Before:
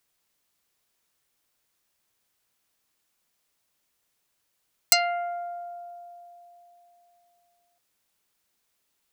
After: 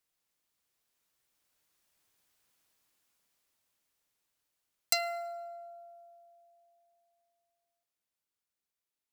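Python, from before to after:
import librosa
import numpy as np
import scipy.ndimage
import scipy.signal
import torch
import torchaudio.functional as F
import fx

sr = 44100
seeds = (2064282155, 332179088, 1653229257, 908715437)

y = fx.doppler_pass(x, sr, speed_mps=6, closest_m=5.7, pass_at_s=2.38)
y = fx.rev_fdn(y, sr, rt60_s=1.1, lf_ratio=1.0, hf_ratio=0.95, size_ms=20.0, drr_db=18.5)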